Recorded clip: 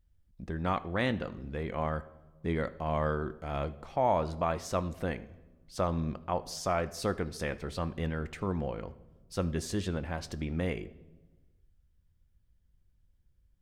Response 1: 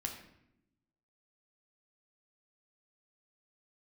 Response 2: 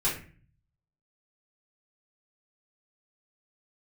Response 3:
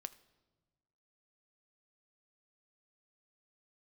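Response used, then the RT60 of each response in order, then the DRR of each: 3; 0.80 s, 0.40 s, non-exponential decay; 1.5, −8.5, 12.5 decibels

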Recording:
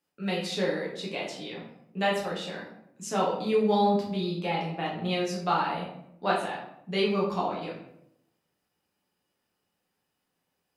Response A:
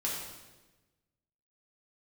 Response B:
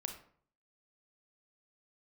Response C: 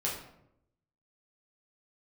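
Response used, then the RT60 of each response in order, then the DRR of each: C; 1.2, 0.55, 0.80 seconds; −5.5, 4.5, −5.5 decibels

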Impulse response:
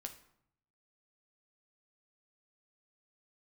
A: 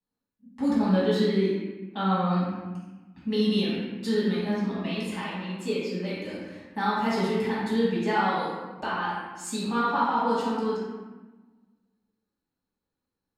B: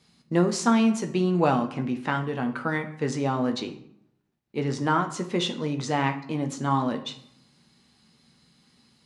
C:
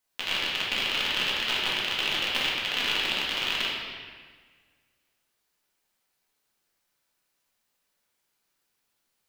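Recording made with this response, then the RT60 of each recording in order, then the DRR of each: B; 1.2, 0.70, 1.6 seconds; −9.5, 5.0, −6.0 decibels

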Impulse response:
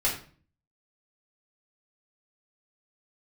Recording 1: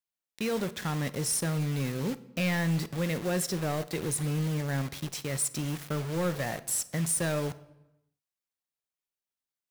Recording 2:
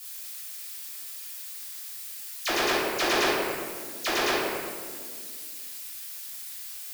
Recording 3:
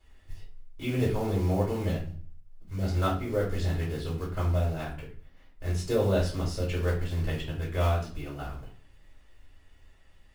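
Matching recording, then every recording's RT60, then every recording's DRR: 3; 1.0, 1.9, 0.40 seconds; 13.5, −10.0, −6.5 decibels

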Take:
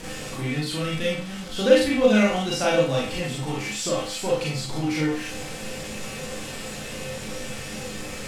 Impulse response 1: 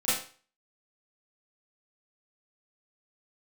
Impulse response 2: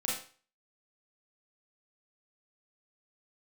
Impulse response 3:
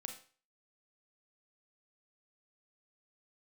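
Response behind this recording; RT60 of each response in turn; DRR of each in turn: 2; 0.40, 0.40, 0.40 seconds; −13.5, −5.0, 4.0 decibels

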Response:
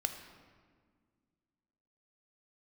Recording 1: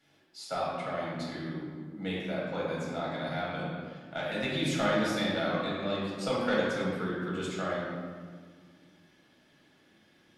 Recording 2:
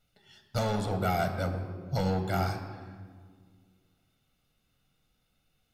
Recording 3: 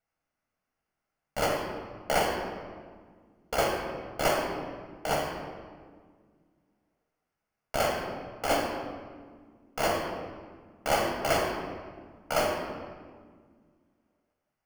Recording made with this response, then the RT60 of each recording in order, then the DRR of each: 2; 1.7, 1.8, 1.8 seconds; −6.5, 6.0, 0.5 decibels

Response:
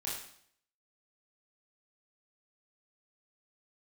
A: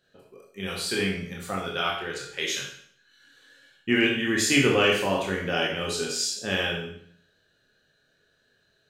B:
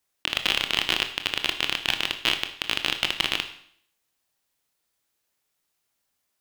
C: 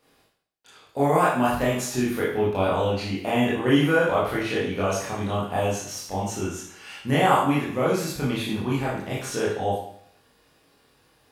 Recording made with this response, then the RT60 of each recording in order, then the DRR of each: C; 0.60, 0.60, 0.60 seconds; −2.0, 7.0, −7.0 decibels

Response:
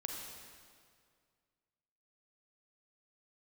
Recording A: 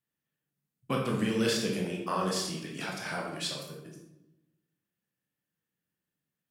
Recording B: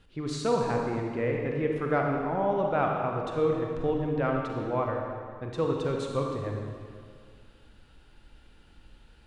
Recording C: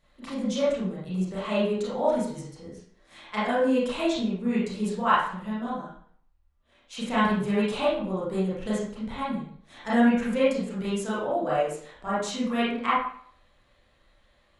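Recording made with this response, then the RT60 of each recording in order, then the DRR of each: B; 0.90, 2.1, 0.55 seconds; −1.5, 0.5, −10.0 decibels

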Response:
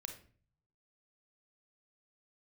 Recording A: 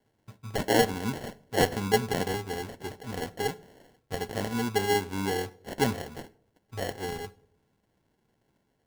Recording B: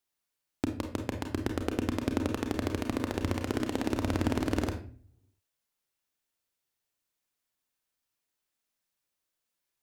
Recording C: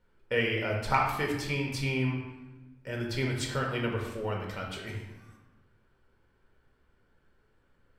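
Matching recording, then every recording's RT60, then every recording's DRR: B; non-exponential decay, 0.45 s, 1.0 s; 16.0, 4.5, −1.0 decibels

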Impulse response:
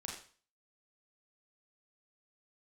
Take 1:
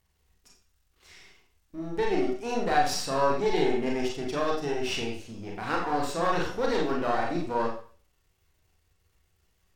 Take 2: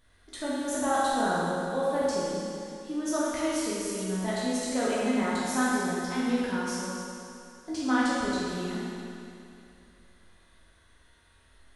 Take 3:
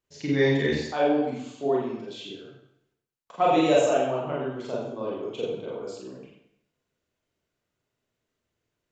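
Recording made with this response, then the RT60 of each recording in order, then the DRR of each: 1; 0.40, 2.6, 0.70 seconds; −2.0, −9.0, −5.5 decibels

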